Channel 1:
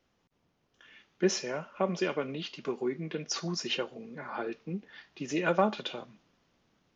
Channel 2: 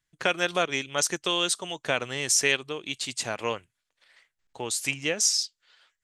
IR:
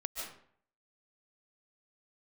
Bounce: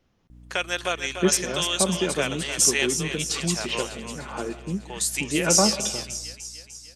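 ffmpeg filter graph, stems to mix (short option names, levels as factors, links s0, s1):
-filter_complex "[0:a]lowshelf=f=230:g=10,volume=1,asplit=2[s0][s1];[s1]volume=0.299[s2];[1:a]highpass=f=390:p=1,highshelf=f=5700:g=9.5,aeval=exprs='val(0)+0.00631*(sin(2*PI*60*n/s)+sin(2*PI*2*60*n/s)/2+sin(2*PI*3*60*n/s)/3+sin(2*PI*4*60*n/s)/4+sin(2*PI*5*60*n/s)/5)':c=same,adelay=300,volume=0.794,asplit=2[s3][s4];[s4]volume=0.355[s5];[2:a]atrim=start_sample=2205[s6];[s2][s6]afir=irnorm=-1:irlink=0[s7];[s5]aecho=0:1:299|598|897|1196|1495|1794|2093|2392|2691:1|0.59|0.348|0.205|0.121|0.0715|0.0422|0.0249|0.0147[s8];[s0][s3][s7][s8]amix=inputs=4:normalize=0"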